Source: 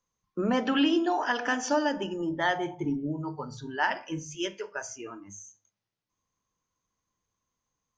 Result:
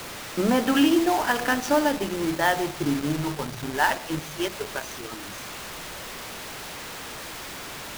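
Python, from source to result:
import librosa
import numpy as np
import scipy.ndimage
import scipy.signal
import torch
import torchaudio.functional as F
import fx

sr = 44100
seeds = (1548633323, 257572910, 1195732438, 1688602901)

y = fx.zero_step(x, sr, step_db=-39.0, at=(3.07, 4.12))
y = fx.quant_dither(y, sr, seeds[0], bits=6, dither='triangular')
y = fx.backlash(y, sr, play_db=-26.5)
y = F.gain(torch.from_numpy(y), 5.0).numpy()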